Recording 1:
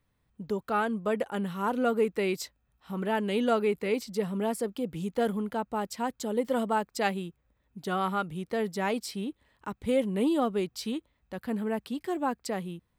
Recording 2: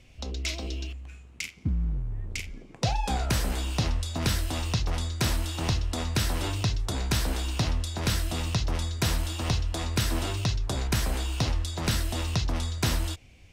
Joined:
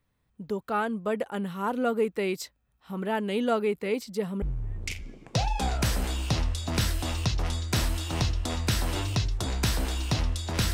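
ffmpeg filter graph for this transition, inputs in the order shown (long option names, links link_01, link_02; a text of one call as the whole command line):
ffmpeg -i cue0.wav -i cue1.wav -filter_complex "[0:a]apad=whole_dur=10.73,atrim=end=10.73,atrim=end=4.422[link_01];[1:a]atrim=start=1.898:end=8.21[link_02];[link_01][link_02]acrossfade=duration=0.004:curve1=hsin:curve2=hsin" out.wav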